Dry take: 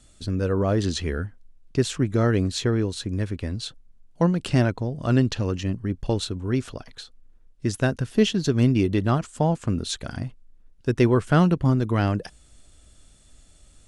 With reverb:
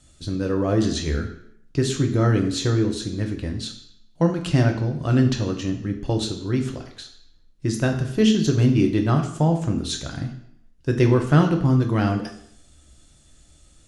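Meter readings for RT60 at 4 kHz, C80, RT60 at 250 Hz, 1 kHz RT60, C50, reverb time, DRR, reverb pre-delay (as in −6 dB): 0.70 s, 11.5 dB, 0.75 s, 0.70 s, 9.0 dB, 0.70 s, 3.5 dB, 3 ms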